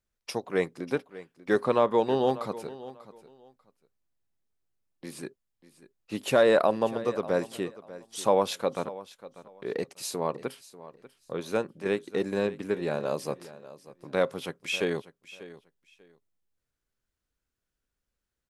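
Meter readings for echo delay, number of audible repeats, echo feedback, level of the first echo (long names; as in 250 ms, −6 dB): 592 ms, 2, 21%, −17.0 dB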